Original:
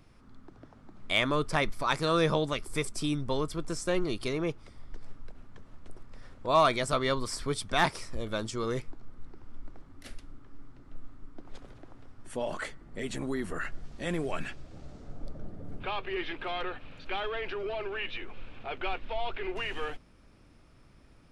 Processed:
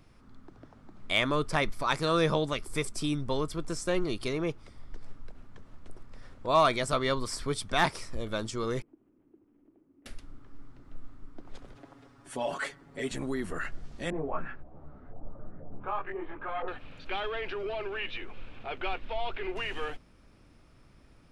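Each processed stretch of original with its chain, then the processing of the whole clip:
0:08.82–0:10.06: variable-slope delta modulation 16 kbit/s + resonant band-pass 320 Hz, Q 4
0:11.75–0:13.12: high-pass filter 230 Hz 6 dB per octave + comb filter 7.2 ms, depth 95%
0:14.10–0:16.68: auto-filter low-pass saw up 2 Hz 730–1,700 Hz + micro pitch shift up and down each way 15 cents
whole clip: no processing

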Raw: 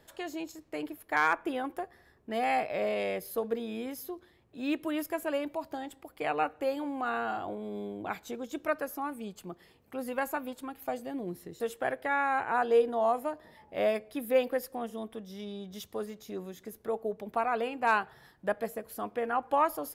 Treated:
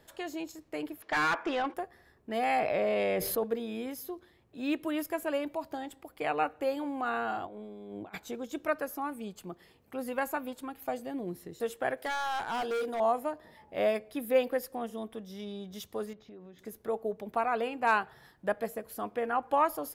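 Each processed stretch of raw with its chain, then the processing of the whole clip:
0:01.02–0:01.74: transistor ladder low-pass 7,100 Hz, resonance 30% + mid-hump overdrive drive 23 dB, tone 3,500 Hz, clips at −20.5 dBFS
0:02.59–0:03.44: high-shelf EQ 4,300 Hz −7.5 dB + envelope flattener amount 70%
0:07.45–0:08.18: high-shelf EQ 9,200 Hz −7 dB + compressor whose output falls as the input rises −42 dBFS, ratio −0.5
0:11.97–0:13.00: bass and treble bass −5 dB, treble +10 dB + hard clipping −29.5 dBFS
0:16.13–0:16.59: downward compressor 4 to 1, threshold −47 dBFS + high-frequency loss of the air 240 metres
whole clip: no processing

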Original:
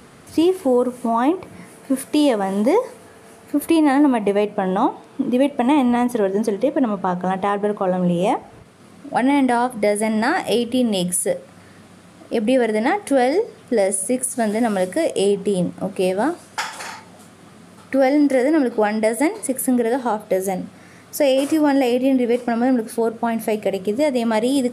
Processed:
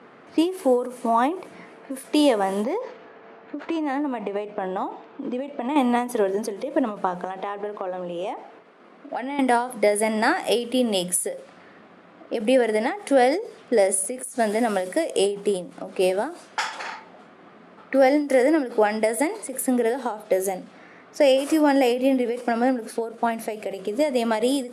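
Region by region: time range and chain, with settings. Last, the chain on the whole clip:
0:02.64–0:05.76: downward compressor 10 to 1, threshold −20 dBFS + linearly interpolated sample-rate reduction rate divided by 4×
0:07.24–0:09.39: high-pass filter 220 Hz + high-shelf EQ 10,000 Hz +5 dB + downward compressor 12 to 1, threshold −23 dBFS
whole clip: low-pass that shuts in the quiet parts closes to 2,000 Hz, open at −17.5 dBFS; high-pass filter 290 Hz 12 dB per octave; every ending faded ahead of time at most 120 dB per second

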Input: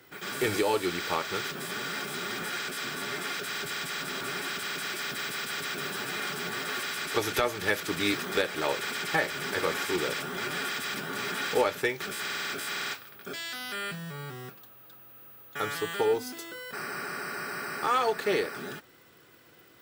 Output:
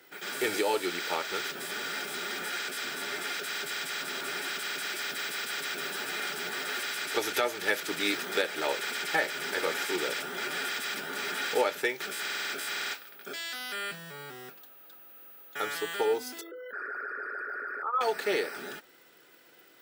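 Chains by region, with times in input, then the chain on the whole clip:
0:16.41–0:18.01: spectral envelope exaggerated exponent 3 + parametric band 210 Hz −4 dB 0.41 octaves + notch filter 1,200 Hz, Q 17
whole clip: Bessel high-pass filter 340 Hz, order 2; notch filter 1,100 Hz, Q 7.1

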